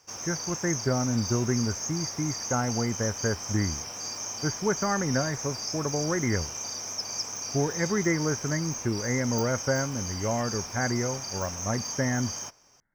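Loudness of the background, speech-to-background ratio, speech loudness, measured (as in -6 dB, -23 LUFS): -33.0 LUFS, 3.5 dB, -29.5 LUFS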